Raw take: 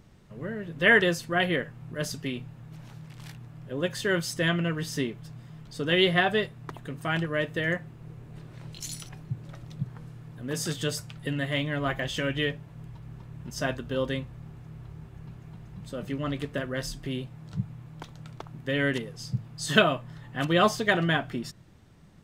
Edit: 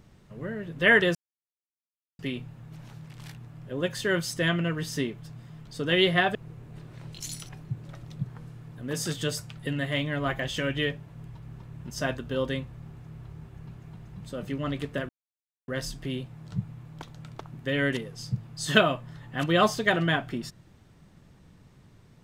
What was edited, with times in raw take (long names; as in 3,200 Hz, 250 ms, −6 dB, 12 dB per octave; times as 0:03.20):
0:01.15–0:02.19: silence
0:06.35–0:07.95: remove
0:16.69: splice in silence 0.59 s